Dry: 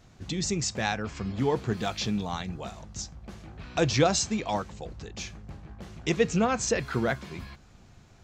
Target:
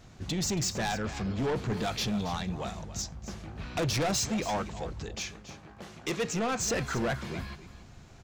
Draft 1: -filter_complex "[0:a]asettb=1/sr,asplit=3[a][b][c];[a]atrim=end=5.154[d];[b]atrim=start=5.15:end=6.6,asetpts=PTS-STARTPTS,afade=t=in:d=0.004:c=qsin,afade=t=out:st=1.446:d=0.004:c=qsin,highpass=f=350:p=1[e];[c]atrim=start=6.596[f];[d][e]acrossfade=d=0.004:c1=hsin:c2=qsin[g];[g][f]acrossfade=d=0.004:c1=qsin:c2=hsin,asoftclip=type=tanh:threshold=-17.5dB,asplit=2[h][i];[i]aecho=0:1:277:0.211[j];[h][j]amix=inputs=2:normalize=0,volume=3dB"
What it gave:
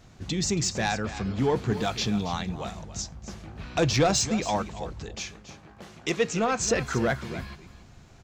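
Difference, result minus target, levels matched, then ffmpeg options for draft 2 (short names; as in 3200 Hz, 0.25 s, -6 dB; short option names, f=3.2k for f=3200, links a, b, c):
soft clip: distortion -10 dB
-filter_complex "[0:a]asettb=1/sr,asplit=3[a][b][c];[a]atrim=end=5.154[d];[b]atrim=start=5.15:end=6.6,asetpts=PTS-STARTPTS,afade=t=in:d=0.004:c=qsin,afade=t=out:st=1.446:d=0.004:c=qsin,highpass=f=350:p=1[e];[c]atrim=start=6.596[f];[d][e]acrossfade=d=0.004:c1=hsin:c2=qsin[g];[g][f]acrossfade=d=0.004:c1=qsin:c2=hsin,asoftclip=type=tanh:threshold=-29dB,asplit=2[h][i];[i]aecho=0:1:277:0.211[j];[h][j]amix=inputs=2:normalize=0,volume=3dB"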